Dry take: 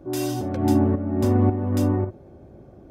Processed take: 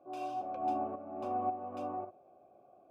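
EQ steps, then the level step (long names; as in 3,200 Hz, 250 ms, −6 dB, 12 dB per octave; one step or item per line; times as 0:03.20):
formant filter a
low-shelf EQ 82 Hz −7 dB
0.0 dB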